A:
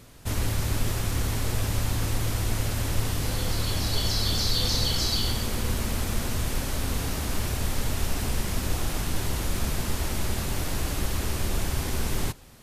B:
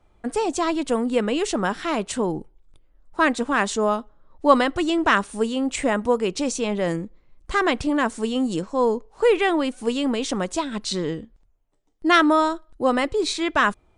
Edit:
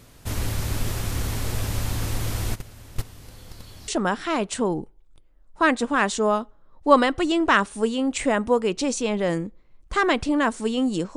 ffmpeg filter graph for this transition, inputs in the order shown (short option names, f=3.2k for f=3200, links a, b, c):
-filter_complex "[0:a]asplit=3[a][b][c];[a]afade=t=out:st=2.54:d=0.02[d];[b]agate=range=-17dB:threshold=-22dB:ratio=16:release=100:detection=peak,afade=t=in:st=2.54:d=0.02,afade=t=out:st=3.88:d=0.02[e];[c]afade=t=in:st=3.88:d=0.02[f];[d][e][f]amix=inputs=3:normalize=0,apad=whole_dur=11.16,atrim=end=11.16,atrim=end=3.882[g];[1:a]atrim=start=1.458:end=8.74[h];[g][h]acrossfade=d=0.004:c1=hsin:c2=hsin"